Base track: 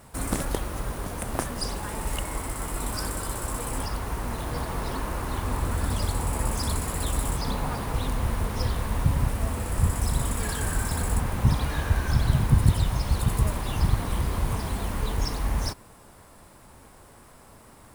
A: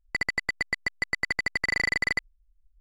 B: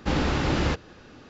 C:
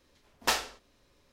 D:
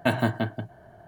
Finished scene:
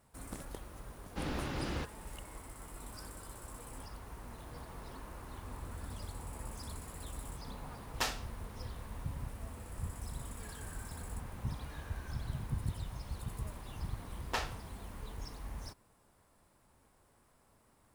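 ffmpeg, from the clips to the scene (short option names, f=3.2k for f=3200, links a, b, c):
-filter_complex "[3:a]asplit=2[a][b];[0:a]volume=-17.5dB[c];[b]highshelf=f=4.3k:g=-11[d];[2:a]atrim=end=1.29,asetpts=PTS-STARTPTS,volume=-13.5dB,afade=t=in:d=0.004:c=hsin,afade=t=out:st=1.286:d=0.004:c=hsin,adelay=1100[e];[a]atrim=end=1.32,asetpts=PTS-STARTPTS,volume=-7.5dB,afade=t=in:d=0.004:c=hsin,afade=t=out:st=1.316:d=0.004:c=hsin,adelay=7530[f];[d]atrim=end=1.32,asetpts=PTS-STARTPTS,volume=-6.5dB,afade=t=in:d=0.004:c=hsin,afade=t=out:st=1.316:d=0.004:c=hsin,adelay=13860[g];[c][e][f][g]amix=inputs=4:normalize=0"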